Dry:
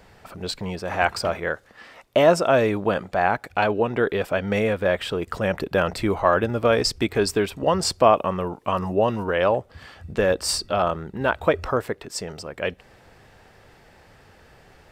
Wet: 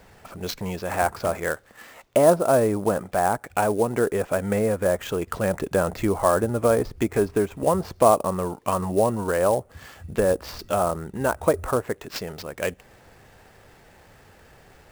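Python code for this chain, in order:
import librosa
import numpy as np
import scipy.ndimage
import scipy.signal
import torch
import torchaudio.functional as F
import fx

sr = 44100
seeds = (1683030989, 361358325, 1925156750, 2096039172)

y = fx.env_lowpass_down(x, sr, base_hz=1200.0, full_db=-18.0)
y = fx.sample_hold(y, sr, seeds[0], rate_hz=9900.0, jitter_pct=20)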